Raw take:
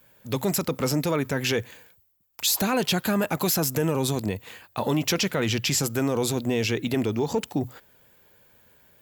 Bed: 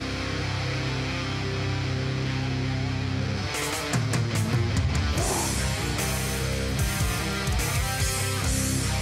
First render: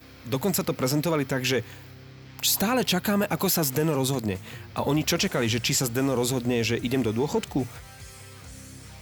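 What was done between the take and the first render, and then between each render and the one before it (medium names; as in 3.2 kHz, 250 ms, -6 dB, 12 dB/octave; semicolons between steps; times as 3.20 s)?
add bed -18.5 dB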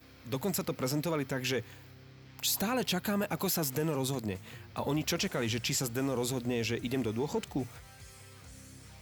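trim -7.5 dB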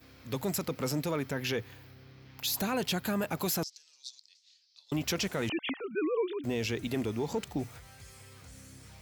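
1.31–2.54 s: peaking EQ 8 kHz -11 dB 0.38 oct; 3.63–4.92 s: Butterworth band-pass 4.9 kHz, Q 2.5; 5.49–6.44 s: formants replaced by sine waves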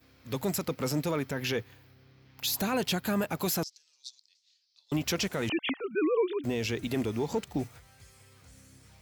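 in parallel at +1 dB: peak limiter -28.5 dBFS, peak gain reduction 9 dB; on the sum: upward expansion 1.5:1, over -46 dBFS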